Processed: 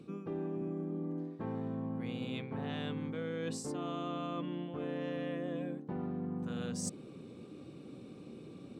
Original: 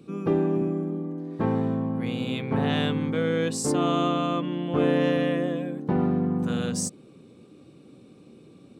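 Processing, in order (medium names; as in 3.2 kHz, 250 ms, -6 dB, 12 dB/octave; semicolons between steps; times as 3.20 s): treble shelf 7.4 kHz -7 dB; reverse; compression 12:1, threshold -36 dBFS, peak gain reduction 19 dB; reverse; trim +1 dB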